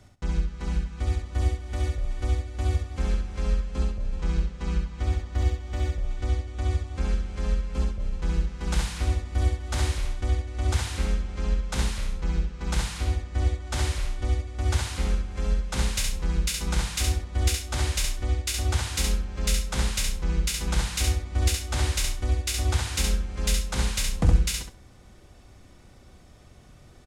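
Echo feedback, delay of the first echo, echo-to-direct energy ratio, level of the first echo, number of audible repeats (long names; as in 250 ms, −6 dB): 19%, 67 ms, −4.0 dB, −4.0 dB, 3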